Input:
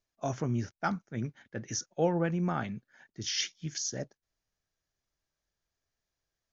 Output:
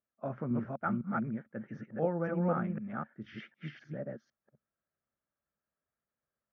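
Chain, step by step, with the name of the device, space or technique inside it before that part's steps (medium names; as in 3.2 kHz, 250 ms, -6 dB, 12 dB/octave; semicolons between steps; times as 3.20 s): chunks repeated in reverse 253 ms, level -1.5 dB; bass cabinet (cabinet simulation 72–2100 Hz, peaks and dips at 100 Hz -6 dB, 140 Hz +3 dB, 220 Hz +10 dB, 560 Hz +7 dB, 1.3 kHz +8 dB); trim -7.5 dB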